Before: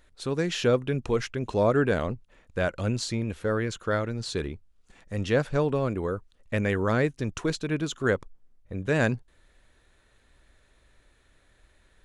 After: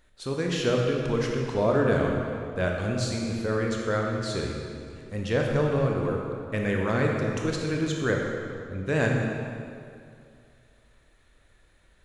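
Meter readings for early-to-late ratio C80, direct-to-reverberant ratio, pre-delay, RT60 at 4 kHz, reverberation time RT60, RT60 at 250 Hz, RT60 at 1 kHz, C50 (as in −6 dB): 2.0 dB, −0.5 dB, 22 ms, 1.8 s, 2.4 s, 2.4 s, 2.3 s, 1.0 dB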